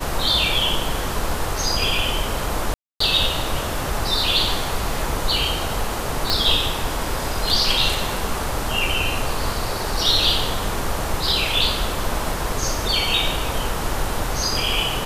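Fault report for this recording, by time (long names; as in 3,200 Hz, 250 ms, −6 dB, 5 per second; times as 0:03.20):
0:02.74–0:03.00: drop-out 264 ms
0:06.30: click −3 dBFS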